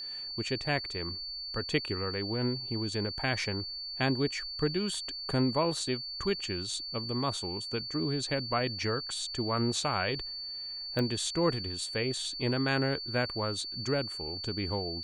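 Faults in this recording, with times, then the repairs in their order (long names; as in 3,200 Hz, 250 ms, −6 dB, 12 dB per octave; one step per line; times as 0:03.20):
whistle 4,500 Hz −37 dBFS
0:10.99: click −19 dBFS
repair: click removal
notch filter 4,500 Hz, Q 30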